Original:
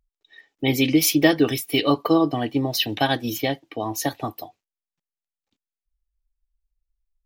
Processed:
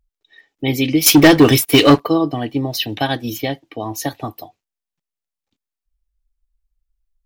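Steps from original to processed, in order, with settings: bass shelf 150 Hz +5 dB; 1.06–2.00 s: waveshaping leveller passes 3; trim +1 dB

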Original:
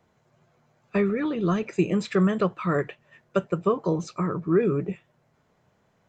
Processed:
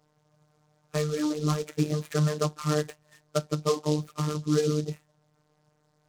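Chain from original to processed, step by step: Bessel low-pass 2 kHz, order 2; robot voice 151 Hz; delay time shaken by noise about 4.7 kHz, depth 0.062 ms

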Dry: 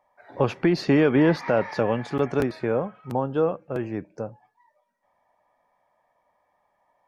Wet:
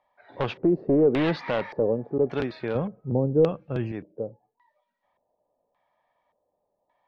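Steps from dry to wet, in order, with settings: one-sided wavefolder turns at -15 dBFS; 2.75–3.92 s: tone controls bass +11 dB, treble +7 dB; LFO low-pass square 0.87 Hz 470–3600 Hz; trim -4.5 dB

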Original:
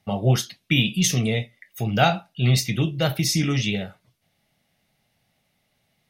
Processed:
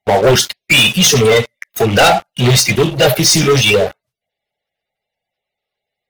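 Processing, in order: coarse spectral quantiser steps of 30 dB; resonant low shelf 360 Hz -6 dB, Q 3; waveshaping leveller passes 5

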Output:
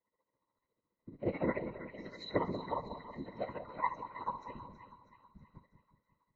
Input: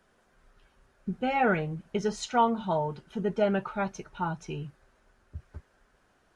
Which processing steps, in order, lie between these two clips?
high-pass 100 Hz; gate -53 dBFS, range -13 dB; bass shelf 430 Hz -11 dB; pitch-class resonator B, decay 0.27 s; whisper effect; tremolo 14 Hz, depth 79%; two-band feedback delay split 1.1 kHz, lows 184 ms, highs 322 ms, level -10 dB; trim +16.5 dB; AAC 32 kbps 16 kHz

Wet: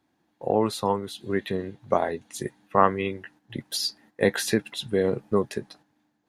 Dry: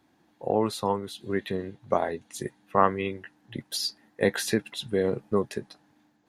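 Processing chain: gate -55 dBFS, range -8 dB; trim +2 dB

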